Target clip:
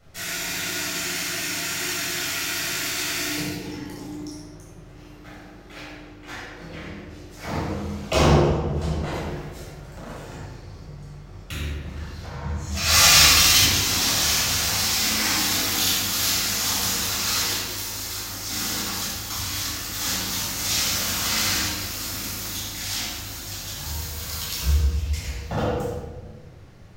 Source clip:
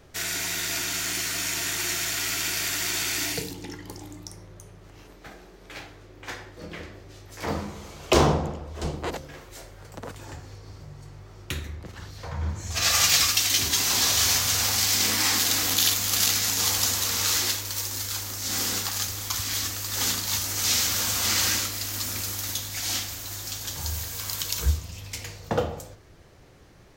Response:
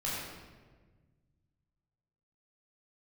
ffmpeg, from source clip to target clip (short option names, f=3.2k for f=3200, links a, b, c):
-filter_complex "[0:a]asplit=3[a][b][c];[a]afade=t=out:st=12.88:d=0.02[d];[b]acontrast=76,afade=t=in:st=12.88:d=0.02,afade=t=out:st=13.63:d=0.02[e];[c]afade=t=in:st=13.63:d=0.02[f];[d][e][f]amix=inputs=3:normalize=0[g];[1:a]atrim=start_sample=2205,asetrate=48510,aresample=44100[h];[g][h]afir=irnorm=-1:irlink=0,volume=-2.5dB"